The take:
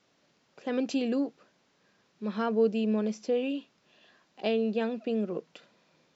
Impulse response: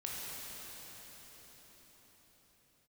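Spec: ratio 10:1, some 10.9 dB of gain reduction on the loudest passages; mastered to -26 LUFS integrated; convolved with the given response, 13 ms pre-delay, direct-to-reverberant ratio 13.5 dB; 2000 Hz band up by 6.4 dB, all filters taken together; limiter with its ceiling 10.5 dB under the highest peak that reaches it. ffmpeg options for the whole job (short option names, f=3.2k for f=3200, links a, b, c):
-filter_complex "[0:a]equalizer=f=2k:t=o:g=9,acompressor=threshold=-30dB:ratio=10,alimiter=level_in=5dB:limit=-24dB:level=0:latency=1,volume=-5dB,asplit=2[a][b];[1:a]atrim=start_sample=2205,adelay=13[c];[b][c]afir=irnorm=-1:irlink=0,volume=-15.5dB[d];[a][d]amix=inputs=2:normalize=0,volume=12.5dB"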